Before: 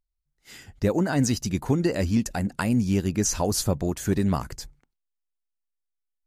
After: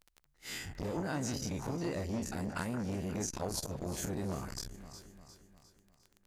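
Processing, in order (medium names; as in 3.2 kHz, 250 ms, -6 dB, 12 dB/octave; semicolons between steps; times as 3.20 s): every event in the spectrogram widened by 60 ms; compression 6:1, threshold -32 dBFS, peak gain reduction 16.5 dB; crackle 12 per s -42 dBFS; echo whose repeats swap between lows and highs 177 ms, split 1.9 kHz, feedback 69%, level -11 dB; transformer saturation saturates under 810 Hz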